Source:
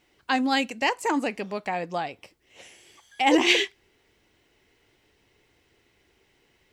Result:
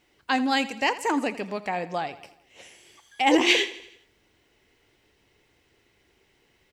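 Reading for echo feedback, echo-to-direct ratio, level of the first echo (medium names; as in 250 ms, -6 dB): 53%, -15.0 dB, -16.5 dB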